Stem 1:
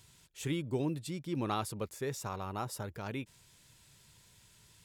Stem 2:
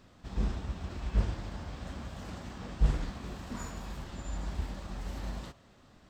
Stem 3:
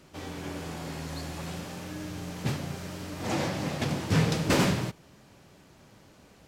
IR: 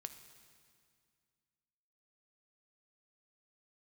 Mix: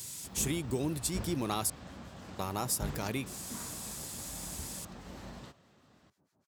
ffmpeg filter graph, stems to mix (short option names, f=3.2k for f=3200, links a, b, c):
-filter_complex "[0:a]acontrast=78,aexciter=amount=2.9:drive=5.5:freq=2.1k,volume=2.5dB,asplit=3[a][b][c];[a]atrim=end=1.7,asetpts=PTS-STARTPTS,afade=t=out:st=1.696:d=0.004:c=hsin[d];[b]atrim=start=1.7:end=2.39,asetpts=PTS-STARTPTS,volume=0[e];[c]atrim=start=2.39,asetpts=PTS-STARTPTS,afade=t=in:d=0.004:c=hsin[f];[d][e][f]concat=n=3:v=0:a=1[g];[1:a]volume=-4dB[h];[2:a]acompressor=threshold=-34dB:ratio=6,acrossover=split=1200[i][j];[i]aeval=exprs='val(0)*(1-1/2+1/2*cos(2*PI*6.4*n/s))':c=same[k];[j]aeval=exprs='val(0)*(1-1/2-1/2*cos(2*PI*6.4*n/s))':c=same[l];[k][l]amix=inputs=2:normalize=0,adelay=600,volume=-14dB[m];[g][m]amix=inputs=2:normalize=0,equalizer=f=2.8k:w=1.2:g=-8,acompressor=threshold=-34dB:ratio=2.5,volume=0dB[n];[h][n]amix=inputs=2:normalize=0,highpass=96"